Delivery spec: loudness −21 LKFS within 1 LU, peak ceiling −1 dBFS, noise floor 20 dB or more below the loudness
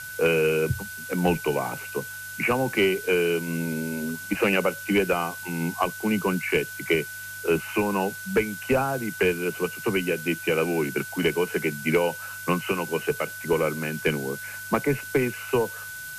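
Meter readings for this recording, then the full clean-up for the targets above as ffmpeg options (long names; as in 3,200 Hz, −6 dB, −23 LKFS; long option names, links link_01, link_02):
interfering tone 1,500 Hz; level of the tone −36 dBFS; background noise floor −38 dBFS; target noise floor −46 dBFS; integrated loudness −26.0 LKFS; sample peak −11.0 dBFS; target loudness −21.0 LKFS
→ -af "bandreject=frequency=1500:width=30"
-af "afftdn=noise_reduction=8:noise_floor=-38"
-af "volume=5dB"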